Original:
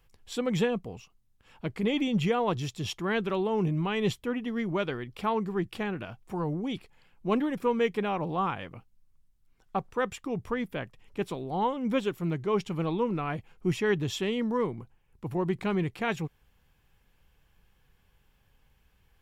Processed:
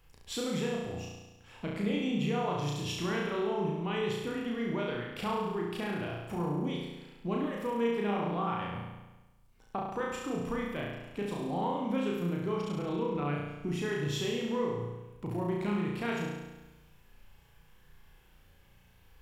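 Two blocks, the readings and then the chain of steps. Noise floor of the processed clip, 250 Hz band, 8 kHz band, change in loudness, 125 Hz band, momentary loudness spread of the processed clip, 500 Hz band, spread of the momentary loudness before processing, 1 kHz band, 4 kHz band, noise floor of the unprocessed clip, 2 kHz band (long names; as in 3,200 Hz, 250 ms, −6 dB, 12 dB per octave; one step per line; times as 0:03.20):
−61 dBFS, −3.0 dB, 0.0 dB, −3.5 dB, −2.5 dB, 9 LU, −3.5 dB, 11 LU, −3.5 dB, −2.0 dB, −67 dBFS, −3.5 dB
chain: downward compressor 3 to 1, threshold −38 dBFS, peak gain reduction 12.5 dB
on a send: flutter between parallel walls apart 5.9 metres, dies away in 1.1 s
on the sum: level +1.5 dB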